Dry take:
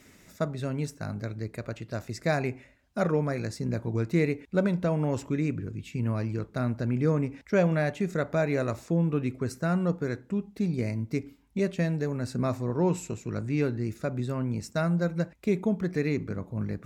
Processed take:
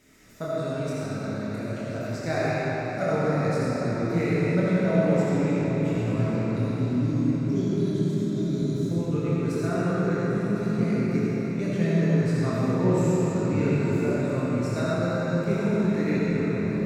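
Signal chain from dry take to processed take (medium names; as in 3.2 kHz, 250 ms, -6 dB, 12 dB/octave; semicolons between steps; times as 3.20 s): chorus voices 2, 0.18 Hz, delay 26 ms, depth 2.9 ms; time-frequency box 6.56–8.89 s, 410–3000 Hz -24 dB; on a send: echo that smears into a reverb 907 ms, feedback 49%, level -10.5 dB; on the sum: algorithmic reverb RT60 4.7 s, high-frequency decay 0.7×, pre-delay 25 ms, DRR -7.5 dB; trim -1 dB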